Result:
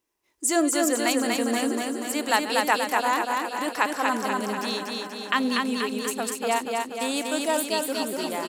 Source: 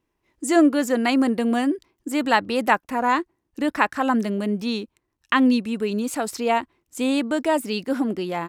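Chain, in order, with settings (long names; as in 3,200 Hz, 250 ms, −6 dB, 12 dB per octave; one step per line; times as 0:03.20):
feedback delay that plays each chunk backwards 605 ms, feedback 48%, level −13.5 dB
0:05.89–0:07.86: noise gate −26 dBFS, range −20 dB
bass and treble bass −12 dB, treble +11 dB
repeating echo 241 ms, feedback 57%, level −3 dB
level −4 dB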